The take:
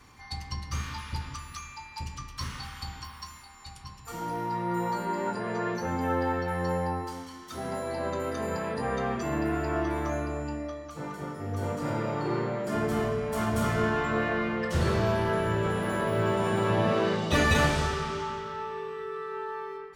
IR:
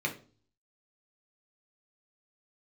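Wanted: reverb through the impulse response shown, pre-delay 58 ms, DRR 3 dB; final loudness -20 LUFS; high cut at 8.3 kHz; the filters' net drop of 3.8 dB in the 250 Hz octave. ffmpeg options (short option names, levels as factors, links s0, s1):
-filter_complex "[0:a]lowpass=8300,equalizer=f=250:t=o:g=-5.5,asplit=2[s0][s1];[1:a]atrim=start_sample=2205,adelay=58[s2];[s1][s2]afir=irnorm=-1:irlink=0,volume=0.335[s3];[s0][s3]amix=inputs=2:normalize=0,volume=2.82"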